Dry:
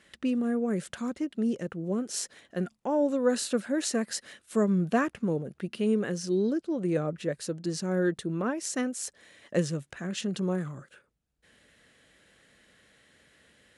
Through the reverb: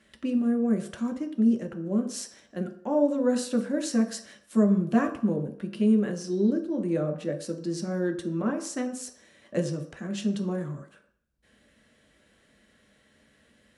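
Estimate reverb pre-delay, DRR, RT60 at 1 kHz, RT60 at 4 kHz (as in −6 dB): 3 ms, 2.0 dB, 0.60 s, 0.55 s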